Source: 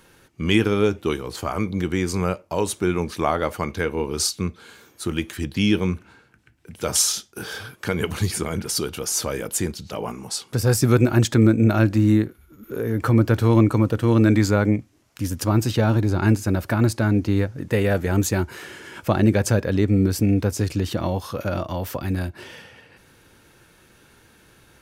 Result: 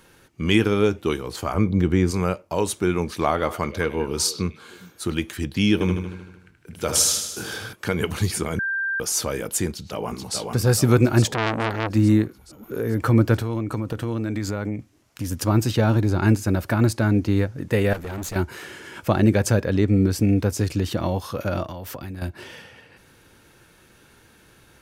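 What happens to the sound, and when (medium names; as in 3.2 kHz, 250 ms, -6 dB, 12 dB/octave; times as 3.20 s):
1.54–2.11 s: tilt EQ -2 dB/octave
3.04–5.15 s: repeats whose band climbs or falls 101 ms, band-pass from 3.1 kHz, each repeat -1.4 oct, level -9.5 dB
5.73–7.73 s: feedback delay 77 ms, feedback 60%, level -7 dB
8.59–9.00 s: bleep 1.58 kHz -22 dBFS
9.68–10.36 s: echo throw 430 ms, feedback 60%, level -3 dB
11.33–11.90 s: transformer saturation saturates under 1.9 kHz
13.35–15.32 s: compression, threshold -22 dBFS
17.93–18.36 s: valve stage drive 28 dB, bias 0.75
19.65–20.21 s: treble shelf 11 kHz -7 dB
21.65–22.22 s: compression, threshold -30 dBFS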